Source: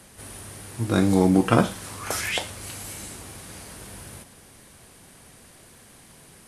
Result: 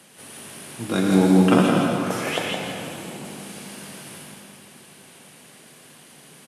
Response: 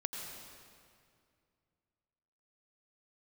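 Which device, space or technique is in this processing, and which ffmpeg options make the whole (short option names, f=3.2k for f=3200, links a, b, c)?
PA in a hall: -filter_complex "[0:a]asettb=1/sr,asplit=3[a][b][c];[a]atrim=end=1.684[d];[b]atrim=start=1.68:end=3.25,asetpts=PTS-STARTPTS,afade=t=in:d=0.004:c=qsin,afade=t=out:st=1.566:d=0.004:c=qsin,tiltshelf=f=1.2k:g=7[e];[c]atrim=start=3.246[f];[d][e]acrossfade=d=0.004:c1=hsin:c2=qsin[g];[g][f]acrossfade=d=0.004:c1=qsin:c2=hsin,highpass=f=140:w=0.5412,highpass=f=140:w=1.3066,equalizer=f=2.9k:t=o:w=0.62:g=5.5,aecho=1:1:165:0.562[h];[1:a]atrim=start_sample=2205[i];[h][i]afir=irnorm=-1:irlink=0"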